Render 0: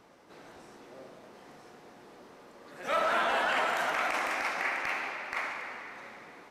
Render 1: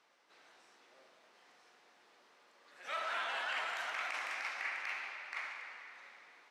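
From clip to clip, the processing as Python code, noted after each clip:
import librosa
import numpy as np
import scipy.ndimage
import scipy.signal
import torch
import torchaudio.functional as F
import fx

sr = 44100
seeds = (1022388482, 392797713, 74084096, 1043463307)

y = fx.bandpass_q(x, sr, hz=3300.0, q=0.58)
y = y * 10.0 ** (-5.5 / 20.0)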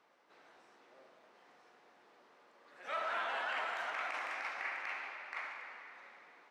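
y = fx.high_shelf(x, sr, hz=2100.0, db=-12.0)
y = y * 10.0 ** (4.5 / 20.0)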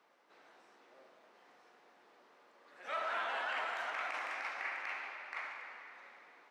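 y = scipy.signal.sosfilt(scipy.signal.butter(2, 150.0, 'highpass', fs=sr, output='sos'), x)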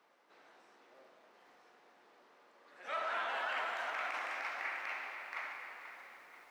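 y = fx.echo_crushed(x, sr, ms=486, feedback_pct=55, bits=10, wet_db=-13)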